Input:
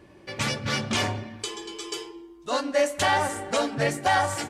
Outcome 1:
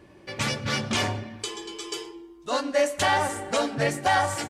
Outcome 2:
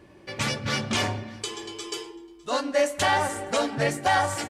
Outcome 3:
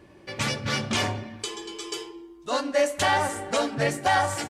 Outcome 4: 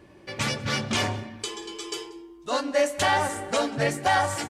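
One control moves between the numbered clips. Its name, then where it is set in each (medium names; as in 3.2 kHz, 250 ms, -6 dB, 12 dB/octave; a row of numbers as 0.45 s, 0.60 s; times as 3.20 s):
delay, time: 116 ms, 605 ms, 71 ms, 186 ms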